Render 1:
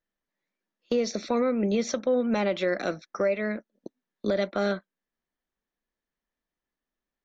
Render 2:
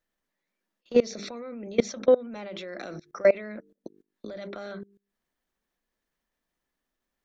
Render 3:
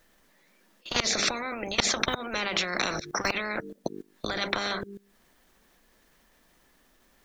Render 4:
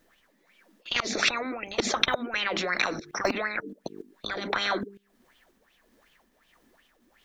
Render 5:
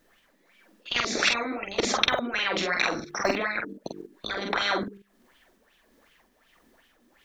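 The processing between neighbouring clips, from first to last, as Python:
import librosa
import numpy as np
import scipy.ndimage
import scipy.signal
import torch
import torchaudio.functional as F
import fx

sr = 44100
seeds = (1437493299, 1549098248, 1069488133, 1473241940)

y1 = fx.hum_notches(x, sr, base_hz=50, count=9)
y1 = fx.level_steps(y1, sr, step_db=23)
y1 = y1 * 10.0 ** (8.0 / 20.0)
y2 = fx.spectral_comp(y1, sr, ratio=10.0)
y2 = y2 * 10.0 ** (2.5 / 20.0)
y3 = y2 * (1.0 - 0.38 / 2.0 + 0.38 / 2.0 * np.cos(2.0 * np.pi * 1.5 * (np.arange(len(y2)) / sr)))
y3 = fx.bell_lfo(y3, sr, hz=2.7, low_hz=230.0, high_hz=3200.0, db=17)
y3 = y3 * 10.0 ** (-4.0 / 20.0)
y4 = fx.doubler(y3, sr, ms=46.0, db=-3.5)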